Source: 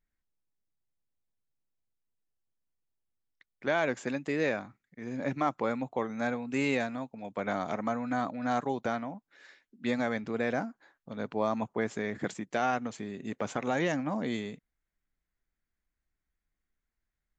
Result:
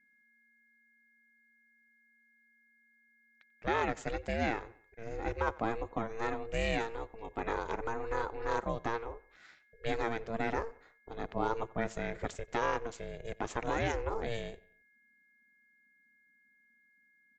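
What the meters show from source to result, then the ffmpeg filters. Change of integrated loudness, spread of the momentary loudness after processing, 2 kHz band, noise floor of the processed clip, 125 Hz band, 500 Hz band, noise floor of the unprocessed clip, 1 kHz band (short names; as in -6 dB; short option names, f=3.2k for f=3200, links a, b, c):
-3.5 dB, 11 LU, -3.0 dB, -69 dBFS, -1.5 dB, -3.0 dB, under -85 dBFS, -1.5 dB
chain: -filter_complex "[0:a]aeval=exprs='val(0)+0.000631*sin(2*PI*1900*n/s)':c=same,asplit=2[a][b];[b]adelay=91,lowpass=f=3.6k:p=1,volume=-21.5dB,asplit=2[c][d];[d]adelay=91,lowpass=f=3.6k:p=1,volume=0.45,asplit=2[e][f];[f]adelay=91,lowpass=f=3.6k:p=1,volume=0.45[g];[a][c][e][g]amix=inputs=4:normalize=0,aeval=exprs='val(0)*sin(2*PI*230*n/s)':c=same"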